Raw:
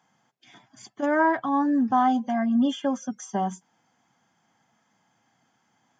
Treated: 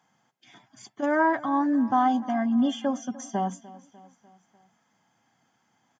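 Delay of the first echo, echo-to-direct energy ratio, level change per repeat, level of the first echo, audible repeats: 298 ms, -18.0 dB, -5.0 dB, -19.5 dB, 3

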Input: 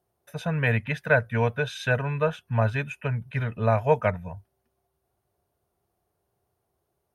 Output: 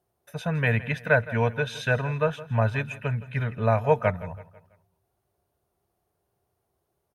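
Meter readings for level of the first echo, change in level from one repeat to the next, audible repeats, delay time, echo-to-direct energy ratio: -17.5 dB, -7.0 dB, 3, 165 ms, -16.5 dB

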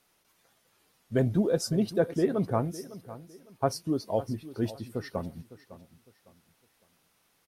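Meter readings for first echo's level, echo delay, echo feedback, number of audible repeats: -16.0 dB, 556 ms, 30%, 2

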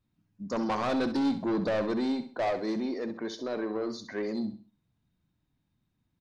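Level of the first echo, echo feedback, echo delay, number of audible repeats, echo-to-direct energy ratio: -11.0 dB, 33%, 65 ms, 3, -10.5 dB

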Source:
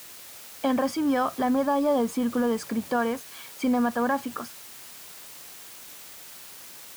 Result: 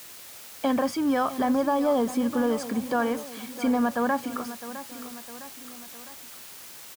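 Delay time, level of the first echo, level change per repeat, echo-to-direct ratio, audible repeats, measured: 658 ms, -13.5 dB, -5.5 dB, -12.0 dB, 3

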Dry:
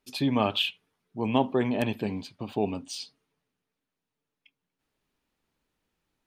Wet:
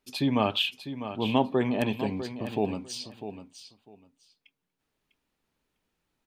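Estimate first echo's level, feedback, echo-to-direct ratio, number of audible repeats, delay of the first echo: -11.0 dB, 18%, -11.0 dB, 2, 650 ms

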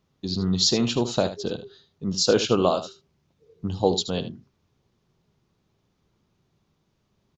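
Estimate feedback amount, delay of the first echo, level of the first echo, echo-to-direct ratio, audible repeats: no regular repeats, 76 ms, -12.0 dB, -12.0 dB, 1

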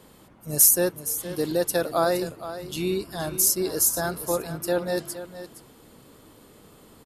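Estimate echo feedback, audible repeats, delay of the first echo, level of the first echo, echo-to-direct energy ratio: no regular repeats, 1, 467 ms, -12.5 dB, -12.5 dB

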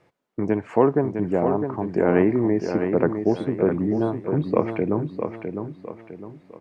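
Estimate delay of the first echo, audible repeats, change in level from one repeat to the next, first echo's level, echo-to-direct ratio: 656 ms, 4, -8.5 dB, -7.0 dB, -6.5 dB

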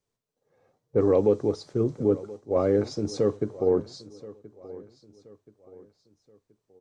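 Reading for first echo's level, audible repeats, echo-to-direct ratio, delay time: -19.0 dB, 3, -18.5 dB, 1027 ms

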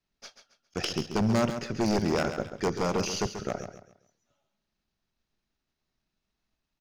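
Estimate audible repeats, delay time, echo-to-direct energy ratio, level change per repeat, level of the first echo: 3, 136 ms, -9.0 dB, -10.0 dB, -9.5 dB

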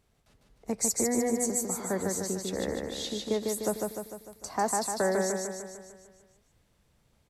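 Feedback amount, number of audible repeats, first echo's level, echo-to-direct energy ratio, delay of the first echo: 55%, 7, -3.0 dB, -1.5 dB, 150 ms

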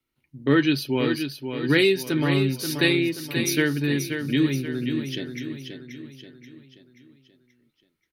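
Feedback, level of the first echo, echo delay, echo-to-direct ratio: 46%, -7.5 dB, 531 ms, -6.5 dB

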